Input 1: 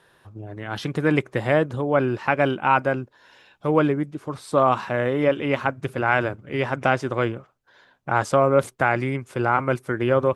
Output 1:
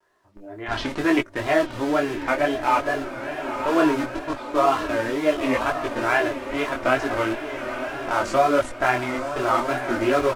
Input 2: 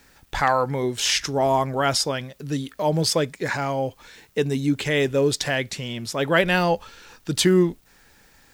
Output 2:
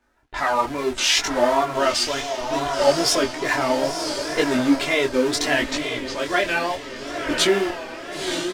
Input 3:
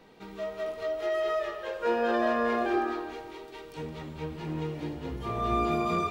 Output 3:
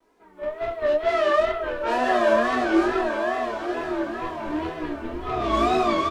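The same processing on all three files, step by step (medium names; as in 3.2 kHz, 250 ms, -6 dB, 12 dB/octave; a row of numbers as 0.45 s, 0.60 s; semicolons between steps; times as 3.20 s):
in parallel at -6 dB: Schmitt trigger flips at -28 dBFS; on the sum: level-controlled noise filter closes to 1.2 kHz, open at -19 dBFS; bass shelf 290 Hz -10 dB; comb 3.1 ms, depth 67%; on a send: echo that smears into a reverb 998 ms, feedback 42%, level -7.5 dB; on the sum: bit crusher 11-bit; wow and flutter 120 cents; treble shelf 10 kHz -8.5 dB; level rider gain up to 12 dB; detune thickener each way 24 cents; trim -2.5 dB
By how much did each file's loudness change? -0.5 LU, +1.5 LU, +7.0 LU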